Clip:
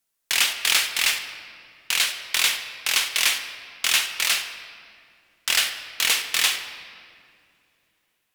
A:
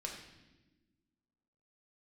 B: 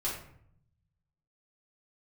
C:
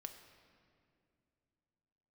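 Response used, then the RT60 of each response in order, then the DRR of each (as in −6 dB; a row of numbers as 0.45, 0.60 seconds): C; non-exponential decay, 0.65 s, 2.5 s; −0.5, −7.5, 6.0 decibels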